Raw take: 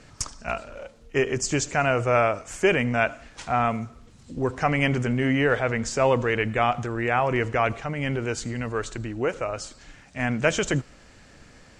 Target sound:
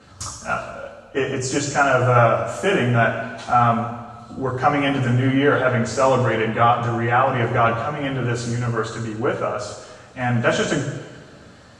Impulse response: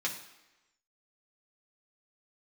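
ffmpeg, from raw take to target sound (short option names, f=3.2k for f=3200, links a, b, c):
-filter_complex "[0:a]equalizer=f=2.2k:t=o:w=0.52:g=-10[a];[1:a]atrim=start_sample=2205,asetrate=26901,aresample=44100[b];[a][b]afir=irnorm=-1:irlink=0,volume=-2dB"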